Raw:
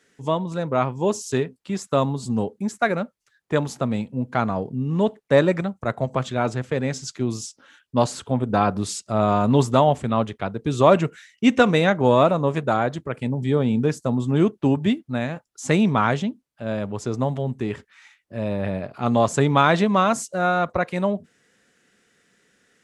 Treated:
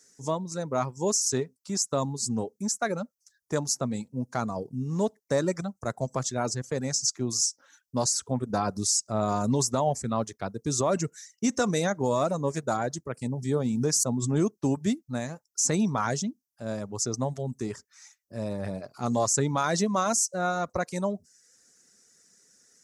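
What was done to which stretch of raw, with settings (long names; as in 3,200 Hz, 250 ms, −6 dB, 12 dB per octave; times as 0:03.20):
0:13.65–0:14.61: background raised ahead of every attack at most 43 dB per second
whole clip: reverb reduction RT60 0.55 s; high shelf with overshoot 4,200 Hz +11.5 dB, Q 3; brickwall limiter −9.5 dBFS; level −5.5 dB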